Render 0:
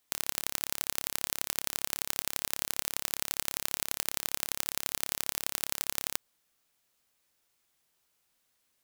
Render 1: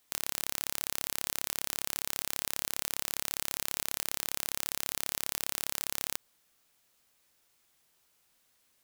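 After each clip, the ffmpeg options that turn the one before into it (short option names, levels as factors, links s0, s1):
-af "alimiter=limit=0.335:level=0:latency=1:release=44,volume=1.68"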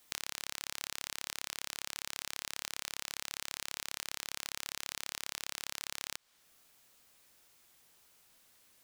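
-filter_complex "[0:a]acrossover=split=850|7300[s0][s1][s2];[s0]acompressor=threshold=0.001:ratio=4[s3];[s1]acompressor=threshold=0.00891:ratio=4[s4];[s2]acompressor=threshold=0.00316:ratio=4[s5];[s3][s4][s5]amix=inputs=3:normalize=0,volume=1.78"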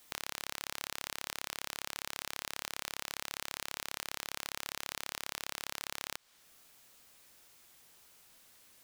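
-af "asoftclip=type=tanh:threshold=0.0668,volume=1.58"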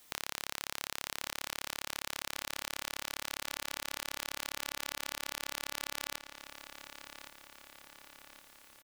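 -filter_complex "[0:a]asplit=2[s0][s1];[s1]adelay=1117,lowpass=f=4900:p=1,volume=0.355,asplit=2[s2][s3];[s3]adelay=1117,lowpass=f=4900:p=1,volume=0.55,asplit=2[s4][s5];[s5]adelay=1117,lowpass=f=4900:p=1,volume=0.55,asplit=2[s6][s7];[s7]adelay=1117,lowpass=f=4900:p=1,volume=0.55,asplit=2[s8][s9];[s9]adelay=1117,lowpass=f=4900:p=1,volume=0.55,asplit=2[s10][s11];[s11]adelay=1117,lowpass=f=4900:p=1,volume=0.55[s12];[s0][s2][s4][s6][s8][s10][s12]amix=inputs=7:normalize=0,volume=1.12"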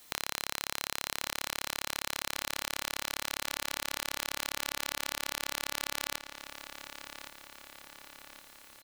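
-af "aeval=exprs='val(0)+0.000282*sin(2*PI*4100*n/s)':c=same,volume=1.58"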